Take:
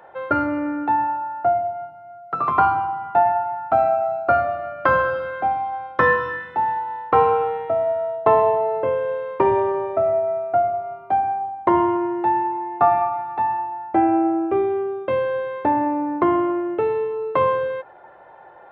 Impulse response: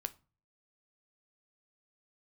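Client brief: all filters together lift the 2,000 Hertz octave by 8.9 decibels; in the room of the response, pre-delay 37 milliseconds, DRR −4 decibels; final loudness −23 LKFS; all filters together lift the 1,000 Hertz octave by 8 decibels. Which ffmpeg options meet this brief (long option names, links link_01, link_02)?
-filter_complex "[0:a]equalizer=frequency=1000:width_type=o:gain=8.5,equalizer=frequency=2000:width_type=o:gain=8,asplit=2[link_01][link_02];[1:a]atrim=start_sample=2205,adelay=37[link_03];[link_02][link_03]afir=irnorm=-1:irlink=0,volume=5dB[link_04];[link_01][link_04]amix=inputs=2:normalize=0,volume=-14dB"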